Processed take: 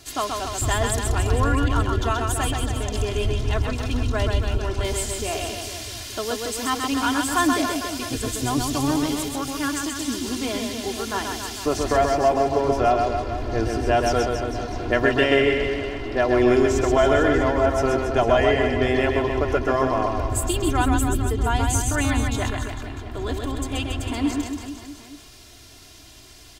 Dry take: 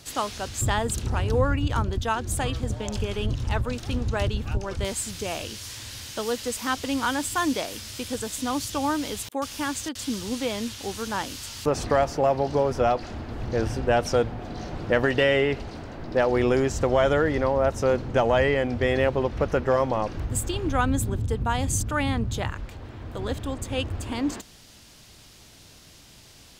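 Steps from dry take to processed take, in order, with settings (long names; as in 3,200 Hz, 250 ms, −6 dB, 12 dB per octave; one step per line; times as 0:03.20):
0:08.07–0:09.03: sub-octave generator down 1 octave, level +3 dB
comb filter 2.9 ms, depth 68%
reverse bouncing-ball delay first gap 130 ms, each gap 1.15×, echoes 5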